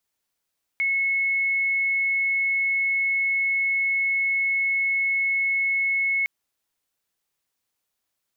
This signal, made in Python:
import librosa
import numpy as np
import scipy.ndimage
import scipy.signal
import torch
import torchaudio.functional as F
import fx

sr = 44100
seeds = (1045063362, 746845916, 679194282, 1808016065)

y = 10.0 ** (-20.0 / 20.0) * np.sin(2.0 * np.pi * (2190.0 * (np.arange(round(5.46 * sr)) / sr)))